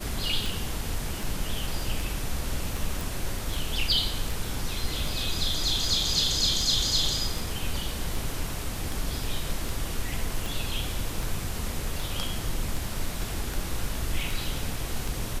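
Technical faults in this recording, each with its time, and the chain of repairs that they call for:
scratch tick 78 rpm
0:03.01: click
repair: click removal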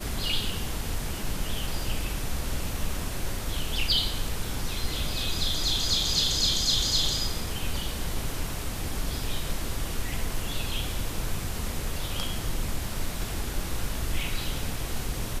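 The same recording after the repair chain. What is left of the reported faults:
none of them is left

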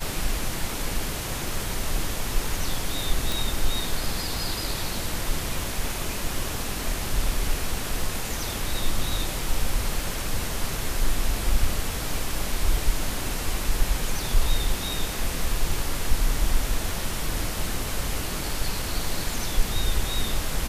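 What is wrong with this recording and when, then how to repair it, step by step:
0:03.32: click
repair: click removal

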